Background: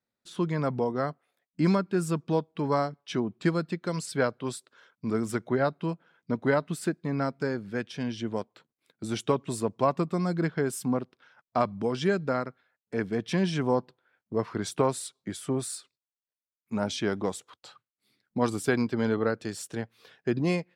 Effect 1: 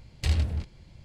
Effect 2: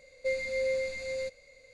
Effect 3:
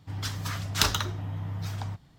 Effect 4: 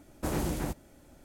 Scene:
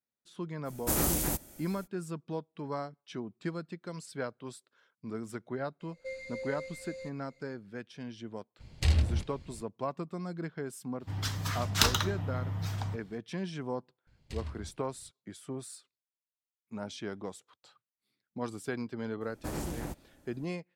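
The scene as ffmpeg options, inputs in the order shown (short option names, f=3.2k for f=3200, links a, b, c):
-filter_complex "[4:a]asplit=2[a][b];[1:a]asplit=2[c][d];[0:a]volume=-10.5dB[e];[a]aemphasis=mode=production:type=75kf,atrim=end=1.24,asetpts=PTS-STARTPTS,volume=-0.5dB,afade=t=in:d=0.05,afade=t=out:st=1.19:d=0.05,adelay=640[f];[2:a]atrim=end=1.73,asetpts=PTS-STARTPTS,volume=-10dB,afade=t=in:d=0.004:c=hsin,afade=t=out:st=1.726:d=0.004:c=hsin,adelay=5800[g];[c]atrim=end=1.04,asetpts=PTS-STARTPTS,volume=-0.5dB,afade=t=in:d=0.02,afade=t=out:st=1.02:d=0.02,adelay=8590[h];[3:a]atrim=end=2.18,asetpts=PTS-STARTPTS,volume=-1dB,afade=t=in:d=0.004:c=hsin,afade=t=out:st=2.176:d=0.004:c=hsin,adelay=11000[i];[d]atrim=end=1.04,asetpts=PTS-STARTPTS,volume=-15dB,afade=t=in:d=0.004:c=hsin,afade=t=out:st=1.036:d=0.004:c=hsin,adelay=14070[j];[b]atrim=end=1.24,asetpts=PTS-STARTPTS,volume=-5.5dB,afade=t=in:d=0.004:c=hsin,afade=t=out:st=1.236:d=0.004:c=hsin,adelay=19210[k];[e][f][g][h][i][j][k]amix=inputs=7:normalize=0"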